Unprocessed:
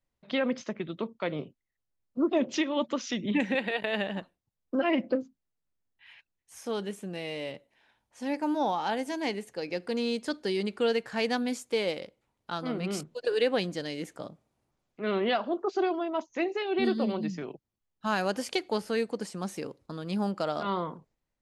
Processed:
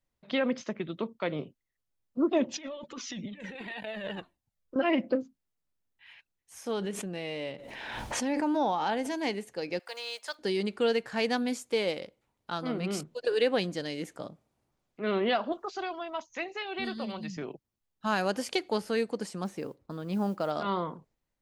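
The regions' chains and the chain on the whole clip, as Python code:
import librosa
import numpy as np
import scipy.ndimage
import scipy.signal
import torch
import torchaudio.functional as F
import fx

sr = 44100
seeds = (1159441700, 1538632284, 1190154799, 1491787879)

y = fx.chain(x, sr, fx.over_compress(threshold_db=-34.0, ratio=-1.0),
    fx.comb_cascade(direction='falling', hz=1.6), at=(2.44, 4.76))
y = fx.chain(y, sr, fx.high_shelf(hz=8500.0, db=-10.5),
    fx.pre_swell(db_per_s=27.0), at=(6.73, 9.11))
y = fx.chain(y, sr, fx.block_float(bits=7),
    fx.highpass(hz=680.0, slope=24), at=(9.79, 10.39))
y = fx.chain(y, sr, fx.peak_eq(hz=340.0, db=-12.5, octaves=1.6),
    fx.band_squash(depth_pct=40), at=(15.52, 17.37))
y = fx.chain(y, sr, fx.high_shelf(hz=3100.0, db=-10.5),
    fx.mod_noise(seeds[0], snr_db=32), at=(19.44, 20.51))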